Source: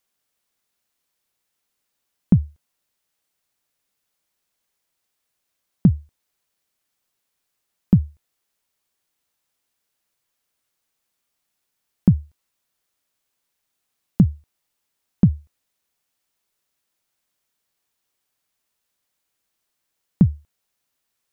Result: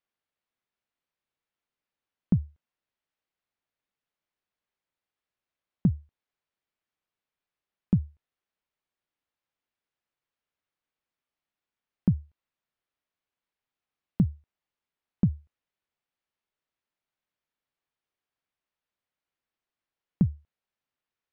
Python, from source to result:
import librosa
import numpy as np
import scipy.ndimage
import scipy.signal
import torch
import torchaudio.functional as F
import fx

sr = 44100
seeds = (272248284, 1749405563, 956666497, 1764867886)

y = scipy.signal.sosfilt(scipy.signal.butter(2, 3100.0, 'lowpass', fs=sr, output='sos'), x)
y = y * librosa.db_to_amplitude(-8.5)